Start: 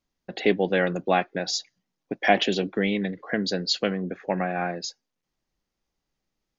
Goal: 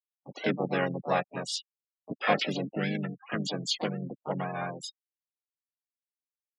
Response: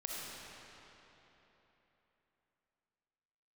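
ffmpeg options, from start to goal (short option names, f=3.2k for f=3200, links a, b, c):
-filter_complex "[0:a]afftfilt=real='re*gte(hypot(re,im),0.0562)':imag='im*gte(hypot(re,im),0.0562)':win_size=1024:overlap=0.75,asplit=4[a][b][c][d];[b]asetrate=33038,aresample=44100,atempo=1.33484,volume=-3dB[e];[c]asetrate=52444,aresample=44100,atempo=0.840896,volume=-18dB[f];[d]asetrate=66075,aresample=44100,atempo=0.66742,volume=-8dB[g];[a][e][f][g]amix=inputs=4:normalize=0,equalizer=f=370:t=o:w=0.5:g=-5.5,volume=-7dB"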